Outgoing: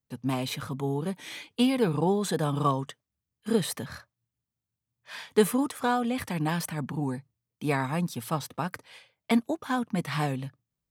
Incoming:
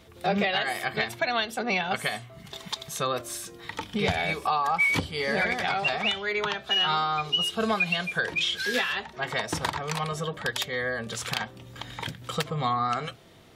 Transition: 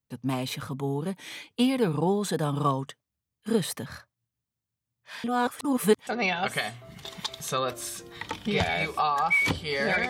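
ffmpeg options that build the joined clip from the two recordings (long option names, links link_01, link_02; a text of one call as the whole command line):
ffmpeg -i cue0.wav -i cue1.wav -filter_complex "[0:a]apad=whole_dur=10.09,atrim=end=10.09,asplit=2[link_01][link_02];[link_01]atrim=end=5.242[link_03];[link_02]atrim=start=5.238:end=6.072,asetpts=PTS-STARTPTS,areverse[link_04];[1:a]atrim=start=1.548:end=5.57[link_05];[link_03][link_04]acrossfade=duration=0.004:curve1=hsin:curve2=hsin[link_06];[link_06][link_05]acrossfade=duration=0.004:curve1=hsin:curve2=hsin" out.wav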